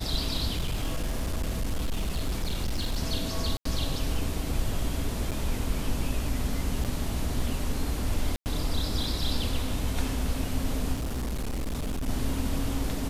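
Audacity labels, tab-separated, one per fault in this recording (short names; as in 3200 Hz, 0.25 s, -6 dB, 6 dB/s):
0.520000	2.960000	clipped -24 dBFS
3.570000	3.650000	gap 84 ms
5.310000	5.320000	gap 7.9 ms
6.840000	6.850000	gap 8 ms
8.360000	8.460000	gap 99 ms
10.930000	12.090000	clipped -27.5 dBFS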